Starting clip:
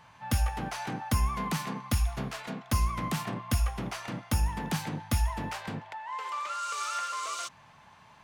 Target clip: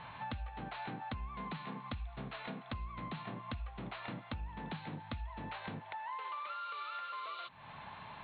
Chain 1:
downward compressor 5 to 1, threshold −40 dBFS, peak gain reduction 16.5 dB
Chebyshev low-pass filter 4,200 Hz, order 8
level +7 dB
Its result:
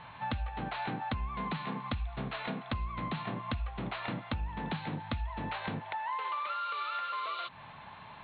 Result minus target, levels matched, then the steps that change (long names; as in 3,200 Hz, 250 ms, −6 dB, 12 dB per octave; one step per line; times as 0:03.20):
downward compressor: peak gain reduction −7 dB
change: downward compressor 5 to 1, threshold −48.5 dBFS, peak gain reduction 23.5 dB